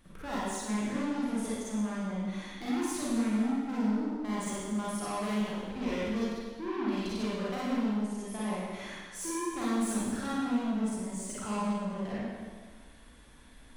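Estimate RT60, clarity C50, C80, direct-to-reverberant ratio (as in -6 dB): 1.5 s, -4.5 dB, -1.0 dB, -8.5 dB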